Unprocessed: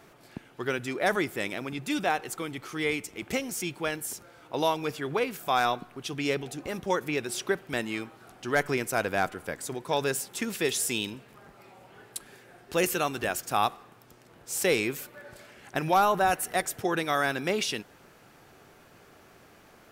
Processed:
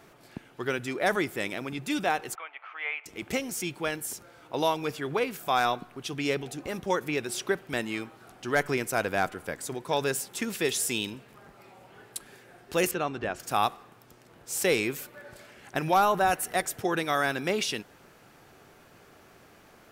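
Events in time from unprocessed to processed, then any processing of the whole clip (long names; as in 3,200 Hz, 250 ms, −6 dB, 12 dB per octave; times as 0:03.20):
0:02.35–0:03.06: elliptic band-pass filter 670–2,700 Hz, stop band 70 dB
0:12.91–0:13.40: head-to-tape spacing loss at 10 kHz 21 dB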